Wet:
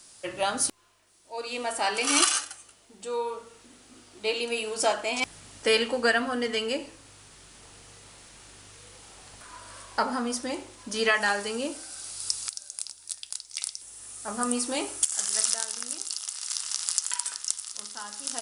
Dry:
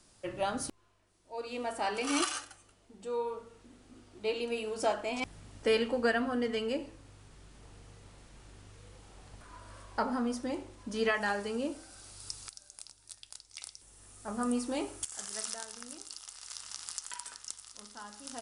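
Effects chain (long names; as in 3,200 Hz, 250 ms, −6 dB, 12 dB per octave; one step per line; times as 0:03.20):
spectral tilt +2.5 dB per octave
level +6 dB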